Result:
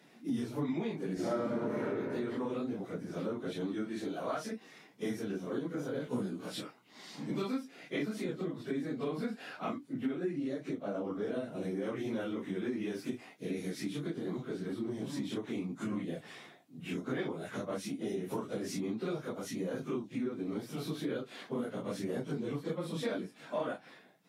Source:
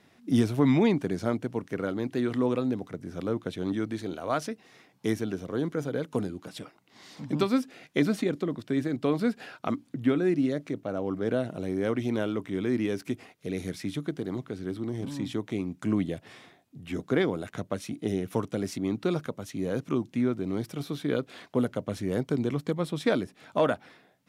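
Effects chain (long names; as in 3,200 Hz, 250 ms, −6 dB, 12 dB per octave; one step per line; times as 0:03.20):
random phases in long frames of 100 ms
high-pass filter 140 Hz 24 dB per octave
0:01.14–0:01.80: thrown reverb, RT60 2 s, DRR −11.5 dB
downward compressor 4 to 1, threshold −34 dBFS, peak gain reduction 17 dB
0:06.05–0:06.61: double-tracking delay 16 ms −4 dB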